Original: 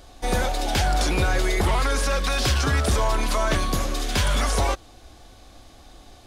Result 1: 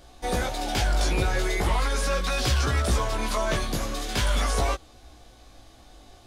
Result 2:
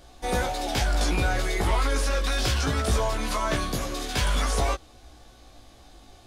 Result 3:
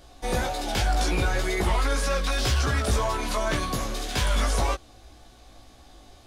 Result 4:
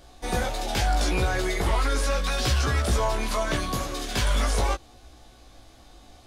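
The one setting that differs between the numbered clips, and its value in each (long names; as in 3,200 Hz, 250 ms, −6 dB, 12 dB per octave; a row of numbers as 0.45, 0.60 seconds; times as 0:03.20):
chorus effect, speed: 0.42, 0.22, 1.9, 0.78 Hertz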